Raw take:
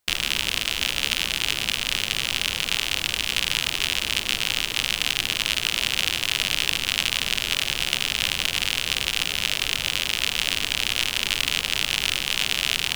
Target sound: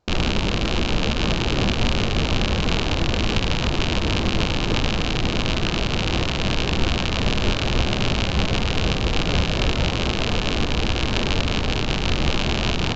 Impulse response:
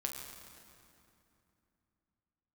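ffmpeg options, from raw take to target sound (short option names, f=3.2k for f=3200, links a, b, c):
-filter_complex "[0:a]asplit=2[a][b];[b]asuperstop=centerf=2800:order=8:qfactor=1.9[c];[1:a]atrim=start_sample=2205,lowpass=3.6k[d];[c][d]afir=irnorm=-1:irlink=0,volume=-2.5dB[e];[a][e]amix=inputs=2:normalize=0,aresample=16000,aresample=44100,tiltshelf=f=1.2k:g=9.5,alimiter=limit=-13dB:level=0:latency=1:release=128,volume=6.5dB"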